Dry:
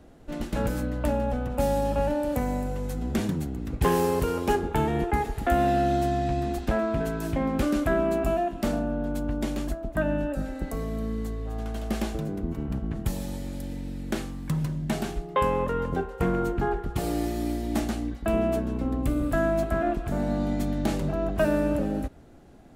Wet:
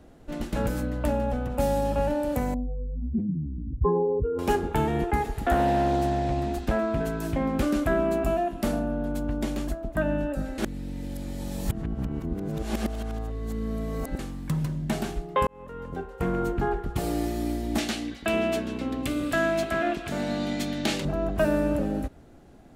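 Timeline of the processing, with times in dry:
2.54–4.39 s: spectral contrast enhancement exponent 2.7
5.44–6.58 s: loudspeaker Doppler distortion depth 0.36 ms
8.45–9.12 s: peaking EQ 11 kHz +7 dB 0.31 oct
10.58–14.19 s: reverse
15.47–16.49 s: fade in
17.78–21.05 s: frequency weighting D

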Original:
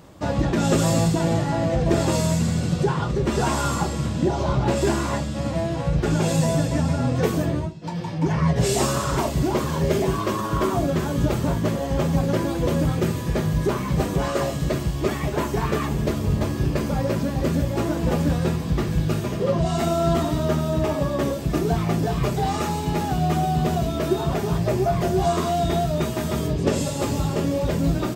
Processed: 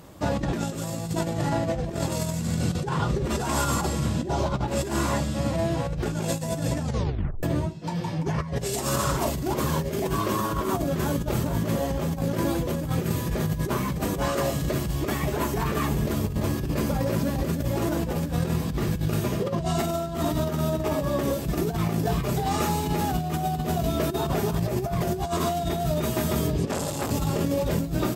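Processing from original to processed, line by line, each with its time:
6.83 s: tape stop 0.60 s
26.71–27.11 s: transformer saturation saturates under 1.1 kHz
whole clip: peaking EQ 13 kHz +8.5 dB 0.73 oct; compressor with a negative ratio -23 dBFS, ratio -0.5; trim -2 dB

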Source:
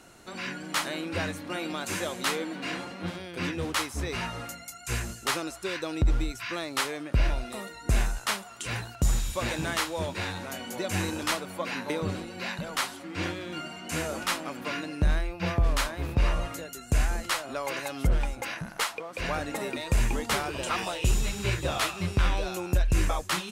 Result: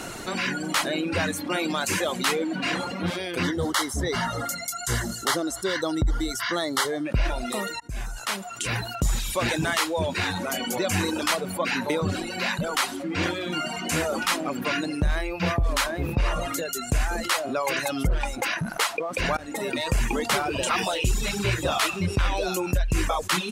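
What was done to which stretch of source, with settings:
3.43–7.05 s: Butterworth band-stop 2.5 kHz, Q 3.3
7.80–9.12 s: fade in
19.37–19.93 s: fade in, from -23 dB
whole clip: reverb removal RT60 0.97 s; peaking EQ 66 Hz -4.5 dB 0.77 oct; level flattener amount 50%; trim +1.5 dB

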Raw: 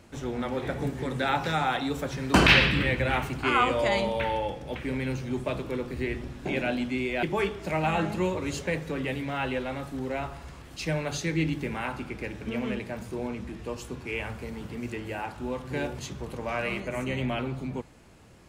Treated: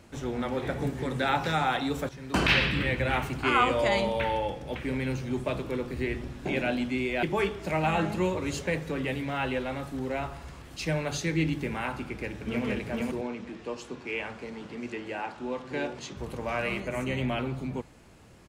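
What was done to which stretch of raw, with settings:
2.09–3.63 s: fade in equal-power, from -12 dB
12.03–12.65 s: echo throw 460 ms, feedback 10%, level -1.5 dB
13.21–16.17 s: three-band isolator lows -15 dB, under 180 Hz, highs -21 dB, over 7.7 kHz

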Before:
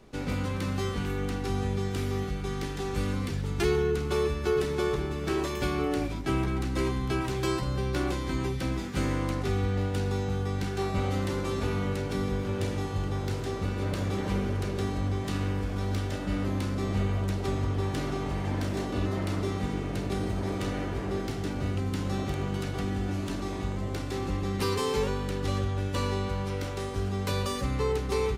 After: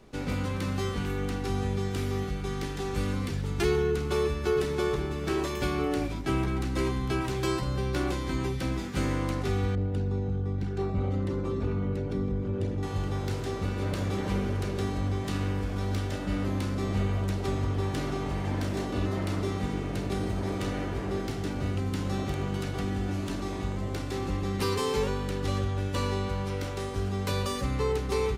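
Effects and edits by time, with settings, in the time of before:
9.75–12.83 s: resonances exaggerated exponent 1.5

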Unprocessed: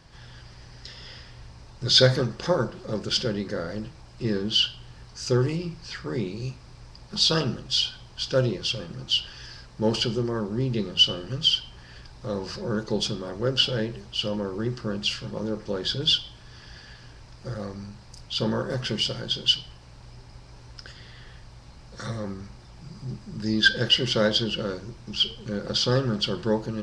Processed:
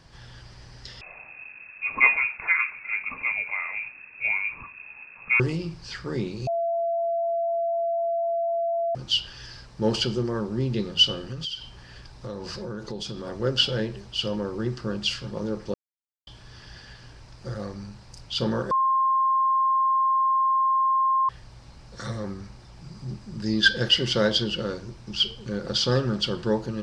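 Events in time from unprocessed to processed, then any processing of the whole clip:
1.01–5.40 s: frequency inversion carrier 2.6 kHz
6.47–8.95 s: bleep 676 Hz -22.5 dBFS
11.28–13.27 s: compression 5:1, threshold -30 dBFS
15.74–16.27 s: mute
18.71–21.29 s: bleep 1.06 kHz -18.5 dBFS

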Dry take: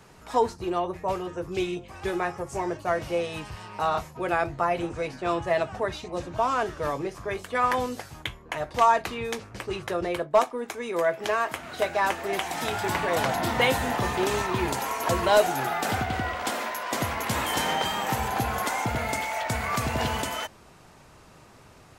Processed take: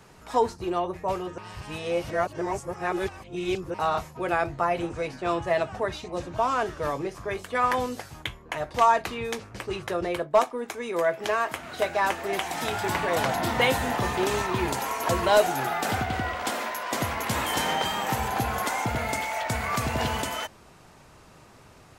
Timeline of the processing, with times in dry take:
1.38–3.74 s: reverse

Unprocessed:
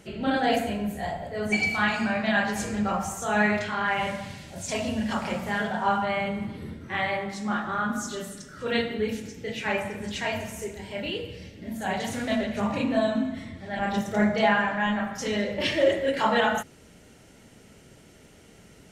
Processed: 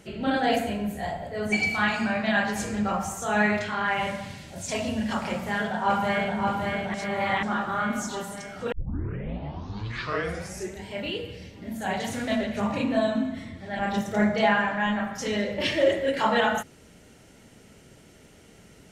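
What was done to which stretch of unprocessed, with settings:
5.32–6.39 s: echo throw 570 ms, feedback 65%, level -3.5 dB
6.94–7.43 s: reverse
8.72 s: tape start 2.12 s

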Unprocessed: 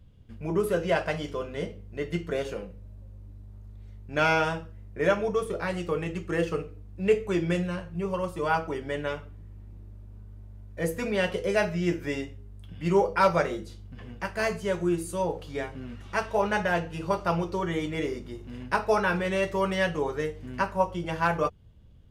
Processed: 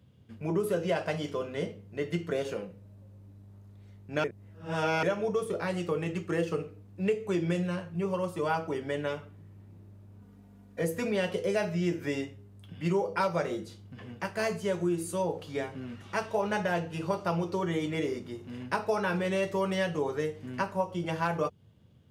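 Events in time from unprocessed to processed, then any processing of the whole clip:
4.24–5.03 s: reverse
10.21–10.82 s: comb 4.2 ms, depth 90%
whole clip: high-pass 100 Hz 24 dB/octave; dynamic bell 1.6 kHz, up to -4 dB, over -37 dBFS, Q 0.75; compression, threshold -24 dBFS

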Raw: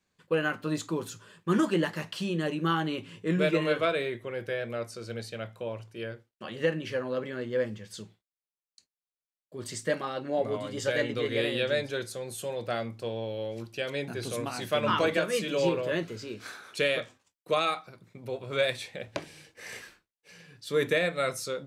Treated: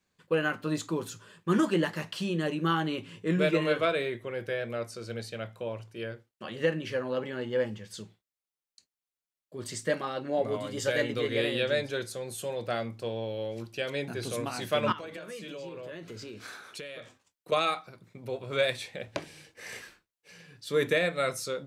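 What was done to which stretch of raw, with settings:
7.09–7.80 s: small resonant body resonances 850/2900 Hz, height 12 dB
10.48–11.26 s: treble shelf 11 kHz +8.5 dB
14.92–17.52 s: compression 8:1, threshold -38 dBFS

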